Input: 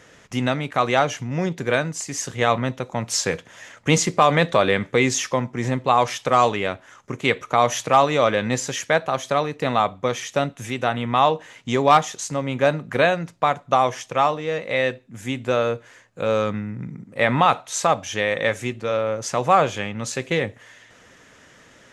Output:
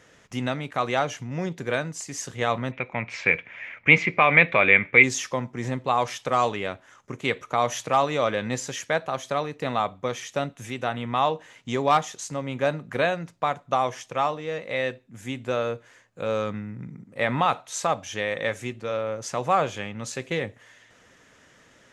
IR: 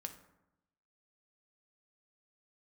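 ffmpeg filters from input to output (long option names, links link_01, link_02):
-filter_complex "[0:a]asplit=3[link_01][link_02][link_03];[link_01]afade=type=out:start_time=2.71:duration=0.02[link_04];[link_02]lowpass=frequency=2300:width_type=q:width=11,afade=type=in:start_time=2.71:duration=0.02,afade=type=out:start_time=5.02:duration=0.02[link_05];[link_03]afade=type=in:start_time=5.02:duration=0.02[link_06];[link_04][link_05][link_06]amix=inputs=3:normalize=0,volume=-5.5dB"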